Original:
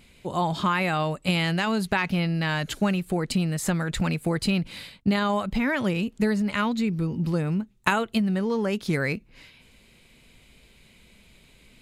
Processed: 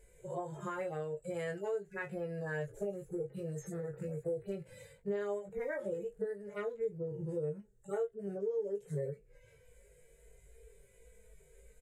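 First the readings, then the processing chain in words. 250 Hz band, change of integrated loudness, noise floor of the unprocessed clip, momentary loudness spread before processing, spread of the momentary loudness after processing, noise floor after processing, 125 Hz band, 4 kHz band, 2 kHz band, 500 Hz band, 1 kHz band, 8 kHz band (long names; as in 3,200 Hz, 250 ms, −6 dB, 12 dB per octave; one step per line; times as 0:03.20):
−20.0 dB, −14.0 dB, −57 dBFS, 3 LU, 5 LU, −65 dBFS, −16.5 dB, below −30 dB, −18.5 dB, −6.0 dB, −19.5 dB, −19.0 dB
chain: harmonic-percussive split with one part muted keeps harmonic
drawn EQ curve 130 Hz 0 dB, 250 Hz −27 dB, 440 Hz +11 dB, 710 Hz −5 dB, 1,100 Hz −13 dB, 1,700 Hz −3 dB, 2,600 Hz −17 dB, 4,400 Hz −21 dB, 7,500 Hz +3 dB, 11,000 Hz −4 dB
downward compressor 6 to 1, threshold −34 dBFS, peak gain reduction 16.5 dB
on a send: ambience of single reflections 20 ms −4 dB, 35 ms −11.5 dB
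on the sum: level −2.5 dB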